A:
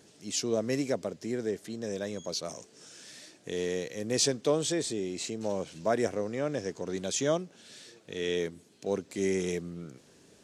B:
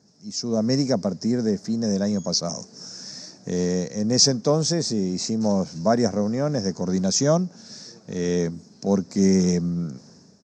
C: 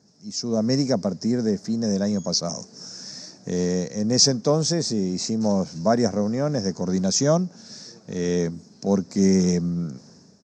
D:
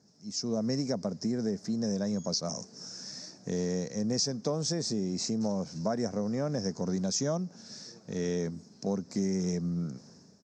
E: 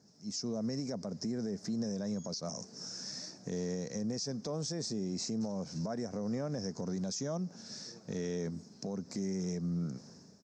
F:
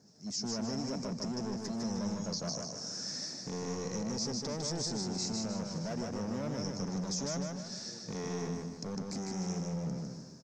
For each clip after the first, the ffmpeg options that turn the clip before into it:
-af "highpass=85,dynaudnorm=f=360:g=3:m=4.47,firequalizer=gain_entry='entry(130,0);entry(200,5);entry(320,-9);entry(760,-4);entry(1300,-7);entry(3100,-24);entry(5200,4);entry(10000,-28)':delay=0.05:min_phase=1,volume=1.12"
-af anull
-af "acompressor=threshold=0.0794:ratio=5,volume=0.562"
-af "alimiter=level_in=1.68:limit=0.0631:level=0:latency=1:release=127,volume=0.596"
-filter_complex "[0:a]acrossover=split=3700[s0][s1];[s0]asoftclip=type=hard:threshold=0.0133[s2];[s2][s1]amix=inputs=2:normalize=0,aecho=1:1:153|306|459|612|765:0.668|0.274|0.112|0.0461|0.0189,volume=1.26"

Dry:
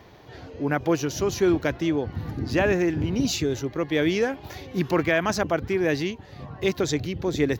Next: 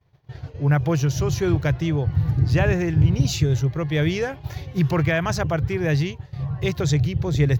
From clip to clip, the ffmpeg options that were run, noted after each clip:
-af "lowshelf=f=180:t=q:w=3:g=8.5,agate=range=0.0224:threshold=0.0316:ratio=3:detection=peak"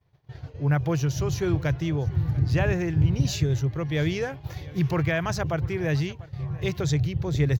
-af "aecho=1:1:694:0.0891,volume=0.631"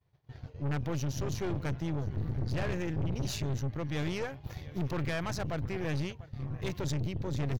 -af "aeval=exprs='(tanh(22.4*val(0)+0.7)-tanh(0.7))/22.4':c=same,volume=0.75"

